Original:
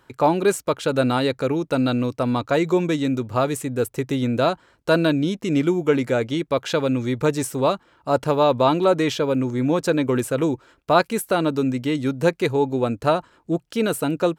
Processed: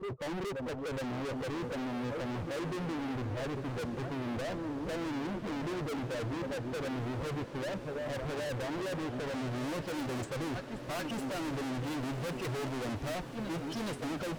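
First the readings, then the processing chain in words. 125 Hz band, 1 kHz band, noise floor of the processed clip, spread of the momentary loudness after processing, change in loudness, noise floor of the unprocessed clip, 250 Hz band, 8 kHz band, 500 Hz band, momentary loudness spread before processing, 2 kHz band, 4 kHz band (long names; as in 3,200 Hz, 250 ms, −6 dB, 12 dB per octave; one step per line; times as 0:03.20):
−12.0 dB, −16.5 dB, −43 dBFS, 2 LU, −15.0 dB, −61 dBFS, −14.5 dB, −14.0 dB, −17.0 dB, 5 LU, −12.0 dB, −13.0 dB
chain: spectral dynamics exaggerated over time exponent 2
parametric band 540 Hz +3.5 dB 2.6 octaves
in parallel at −6.5 dB: soft clipping −15.5 dBFS, distortion −13 dB
on the sum: power curve on the samples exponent 0.35
high-frequency loss of the air 200 metres
on a send: backwards echo 418 ms −12.5 dB
on the sum: low-pass filter sweep 490 Hz → 9,700 Hz, 0:08.98–0:10.37
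gain into a clipping stage and back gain 23 dB
noise gate −25 dBFS, range −21 dB
feedback delay with all-pass diffusion 1,225 ms, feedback 64%, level −10.5 dB
level −7.5 dB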